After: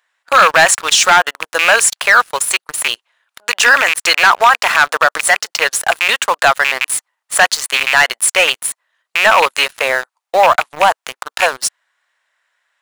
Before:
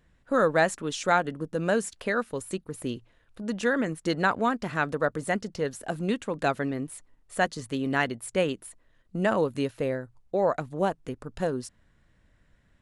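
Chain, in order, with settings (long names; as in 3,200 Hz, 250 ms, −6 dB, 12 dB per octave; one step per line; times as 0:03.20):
loose part that buzzes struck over −33 dBFS, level −26 dBFS
high-pass filter 810 Hz 24 dB per octave
leveller curve on the samples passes 3
in parallel at −10 dB: bit reduction 6 bits
on the sum: boost into a limiter +13.5 dB
level −1 dB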